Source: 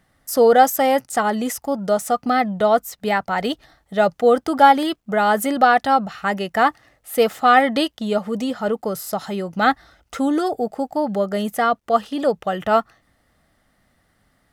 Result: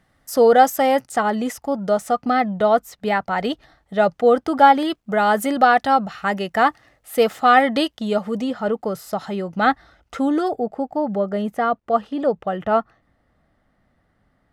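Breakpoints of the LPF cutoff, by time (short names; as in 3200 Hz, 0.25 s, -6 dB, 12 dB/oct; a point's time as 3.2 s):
LPF 6 dB/oct
6300 Hz
from 1.13 s 3800 Hz
from 4.9 s 7900 Hz
from 8.39 s 3300 Hz
from 10.56 s 1300 Hz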